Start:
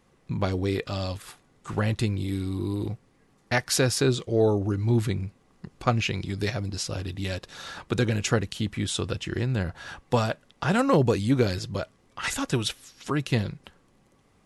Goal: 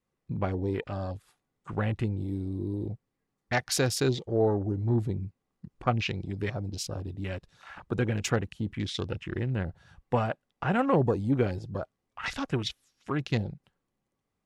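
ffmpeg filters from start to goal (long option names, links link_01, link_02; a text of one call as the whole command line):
ffmpeg -i in.wav -af "afwtdn=0.0141,adynamicequalizer=threshold=0.00631:dfrequency=770:dqfactor=6.2:tfrequency=770:tqfactor=6.2:attack=5:release=100:ratio=0.375:range=2.5:mode=boostabove:tftype=bell,volume=-3.5dB" out.wav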